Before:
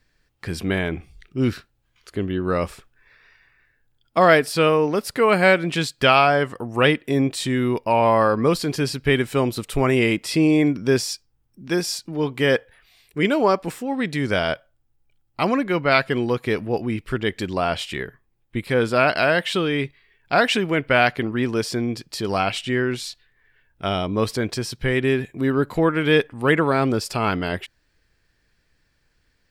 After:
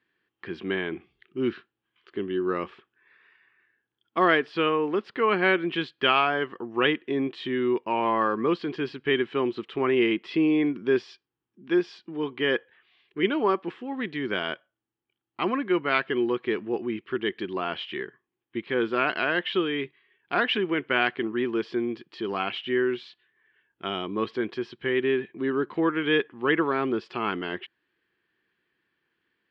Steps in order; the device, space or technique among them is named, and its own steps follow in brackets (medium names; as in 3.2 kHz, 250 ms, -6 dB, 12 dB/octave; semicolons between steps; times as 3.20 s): kitchen radio (cabinet simulation 210–3400 Hz, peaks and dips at 210 Hz +3 dB, 360 Hz +10 dB, 600 Hz -7 dB, 1.1 kHz +5 dB, 1.7 kHz +4 dB, 3.1 kHz +7 dB); trim -8 dB